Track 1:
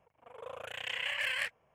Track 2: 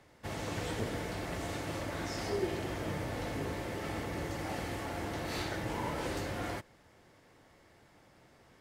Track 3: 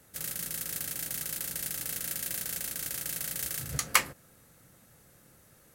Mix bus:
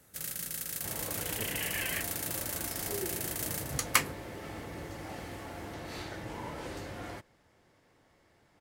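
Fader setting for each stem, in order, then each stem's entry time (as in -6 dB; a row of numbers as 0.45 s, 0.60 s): -3.5 dB, -4.5 dB, -2.0 dB; 0.55 s, 0.60 s, 0.00 s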